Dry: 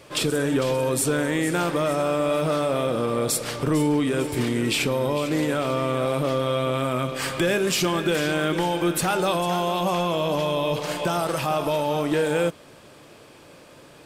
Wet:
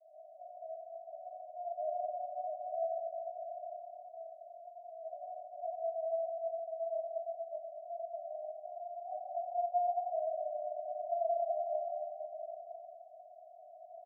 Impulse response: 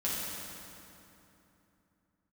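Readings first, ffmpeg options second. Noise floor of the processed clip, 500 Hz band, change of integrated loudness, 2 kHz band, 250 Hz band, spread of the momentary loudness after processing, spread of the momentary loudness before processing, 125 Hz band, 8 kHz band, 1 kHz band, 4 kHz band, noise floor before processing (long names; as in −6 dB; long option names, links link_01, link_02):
−55 dBFS, −14.0 dB, −16.0 dB, below −40 dB, below −40 dB, 16 LU, 3 LU, below −40 dB, below −40 dB, −11.0 dB, below −40 dB, −49 dBFS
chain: -filter_complex "[0:a]areverse,acompressor=threshold=-32dB:ratio=6,areverse,asuperpass=centerf=670:order=12:qfactor=5.1,asplit=2[link_01][link_02];[link_02]adelay=209.9,volume=-7dB,highshelf=frequency=4000:gain=-4.72[link_03];[link_01][link_03]amix=inputs=2:normalize=0[link_04];[1:a]atrim=start_sample=2205,asetrate=70560,aresample=44100[link_05];[link_04][link_05]afir=irnorm=-1:irlink=0,volume=5dB"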